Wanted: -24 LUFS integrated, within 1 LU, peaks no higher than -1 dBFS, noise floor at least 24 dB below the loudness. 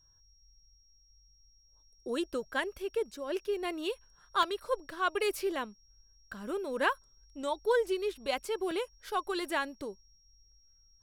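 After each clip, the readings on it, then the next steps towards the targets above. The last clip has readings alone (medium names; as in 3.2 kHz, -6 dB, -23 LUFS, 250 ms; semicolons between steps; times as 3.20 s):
dropouts 2; longest dropout 1.9 ms; steady tone 5.6 kHz; tone level -64 dBFS; loudness -34.0 LUFS; peak level -15.0 dBFS; loudness target -24.0 LUFS
-> interpolate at 4.43/8.71 s, 1.9 ms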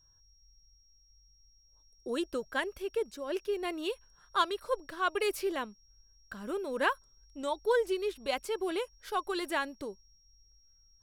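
dropouts 0; steady tone 5.6 kHz; tone level -64 dBFS
-> band-stop 5.6 kHz, Q 30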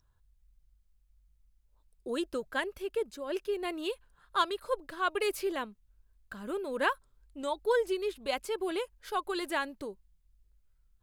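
steady tone not found; loudness -34.0 LUFS; peak level -15.0 dBFS; loudness target -24.0 LUFS
-> trim +10 dB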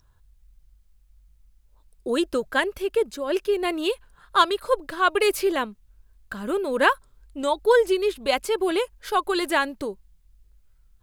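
loudness -24.0 LUFS; peak level -5.0 dBFS; noise floor -60 dBFS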